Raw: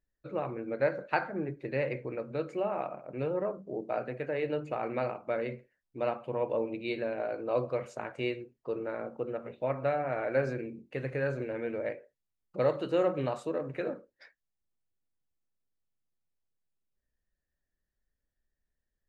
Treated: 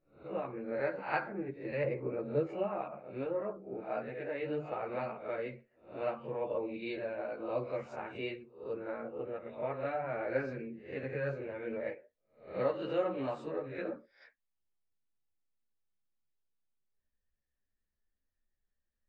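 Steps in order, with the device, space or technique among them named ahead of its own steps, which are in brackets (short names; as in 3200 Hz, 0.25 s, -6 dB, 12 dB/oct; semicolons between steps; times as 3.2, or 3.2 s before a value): spectral swells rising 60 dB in 0.41 s; string-machine ensemble chorus (ensemble effect; LPF 4100 Hz 12 dB/oct); 1.84–2.47 tilt shelf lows +6.5 dB, about 1100 Hz; gain -2 dB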